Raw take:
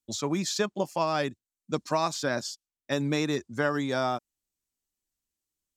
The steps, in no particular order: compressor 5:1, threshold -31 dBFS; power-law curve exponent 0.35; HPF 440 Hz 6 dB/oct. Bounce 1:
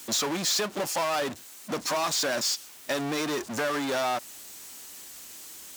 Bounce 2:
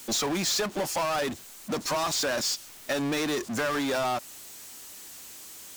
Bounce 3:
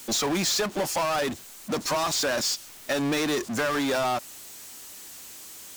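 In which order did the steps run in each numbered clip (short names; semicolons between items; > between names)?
compressor > power-law curve > HPF; compressor > HPF > power-law curve; HPF > compressor > power-law curve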